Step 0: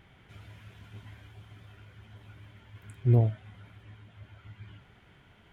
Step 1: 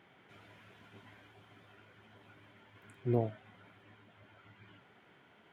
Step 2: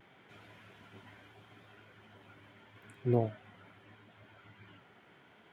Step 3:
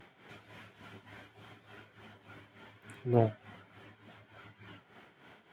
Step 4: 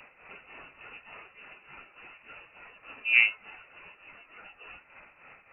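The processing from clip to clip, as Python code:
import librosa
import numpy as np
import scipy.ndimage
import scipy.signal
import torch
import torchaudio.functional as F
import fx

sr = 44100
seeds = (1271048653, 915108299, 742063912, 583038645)

y1 = scipy.signal.sosfilt(scipy.signal.butter(2, 250.0, 'highpass', fs=sr, output='sos'), x)
y1 = fx.high_shelf(y1, sr, hz=3000.0, db=-8.5)
y2 = fx.vibrato(y1, sr, rate_hz=0.77, depth_cents=33.0)
y2 = y2 * librosa.db_to_amplitude(2.0)
y3 = y2 * (1.0 - 0.7 / 2.0 + 0.7 / 2.0 * np.cos(2.0 * np.pi * 3.4 * (np.arange(len(y2)) / sr)))
y3 = fx.cheby_harmonics(y3, sr, harmonics=(6,), levels_db=(-28,), full_scale_db=-17.5)
y3 = y3 * librosa.db_to_amplitude(6.0)
y4 = fx.freq_invert(y3, sr, carrier_hz=2800)
y4 = y4 * librosa.db_to_amplitude(4.5)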